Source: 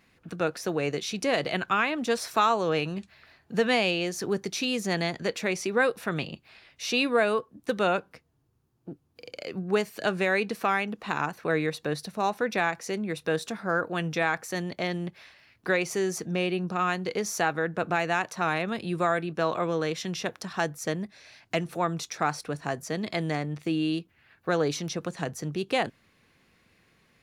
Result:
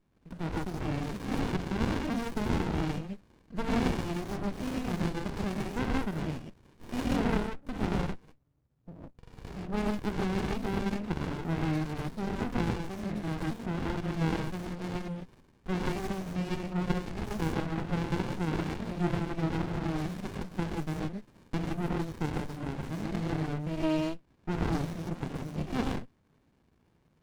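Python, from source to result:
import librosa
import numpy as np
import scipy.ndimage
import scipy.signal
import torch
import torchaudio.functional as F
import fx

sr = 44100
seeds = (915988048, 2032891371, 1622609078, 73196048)

y = fx.rev_gated(x, sr, seeds[0], gate_ms=170, shape='rising', drr_db=-6.0)
y = fx.running_max(y, sr, window=65)
y = F.gain(torch.from_numpy(y), -7.5).numpy()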